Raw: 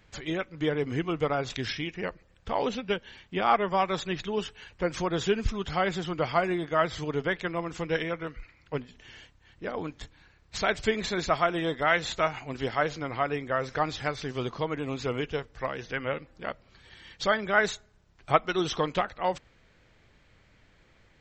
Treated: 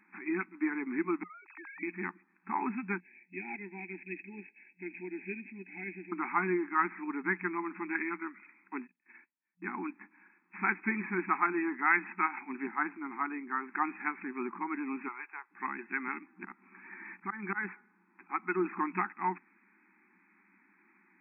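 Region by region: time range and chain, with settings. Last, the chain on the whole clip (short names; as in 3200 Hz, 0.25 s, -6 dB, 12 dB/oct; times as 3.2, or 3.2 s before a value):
1.23–1.83 sine-wave speech + HPF 510 Hz 24 dB/oct + compressor 5:1, threshold -43 dBFS
3–6.12 CVSD 32 kbps + Butterworth band-stop 1200 Hz, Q 0.54 + tilt +4.5 dB/oct
8.79–9.89 gate -49 dBFS, range -30 dB + bell 5700 Hz +14 dB 1.4 oct
12.67–13.74 Bessel low-pass 1700 Hz + three-band expander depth 40%
15.08–15.51 HPF 730 Hz 24 dB/oct + tilt -3.5 dB/oct
16.08–18.65 auto swell 0.197 s + three-band squash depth 40%
whole clip: FFT band-pass 180–2600 Hz; elliptic band-stop 360–840 Hz, stop band 50 dB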